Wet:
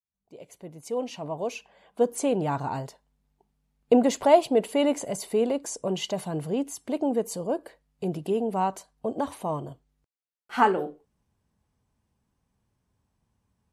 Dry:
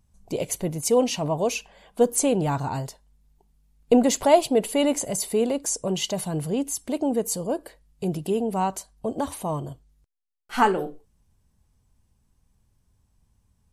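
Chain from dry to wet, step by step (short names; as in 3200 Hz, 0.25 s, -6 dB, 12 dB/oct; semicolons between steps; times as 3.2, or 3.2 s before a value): opening faded in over 2.66 s; HPF 210 Hz 6 dB/oct; high shelf 4200 Hz -11.5 dB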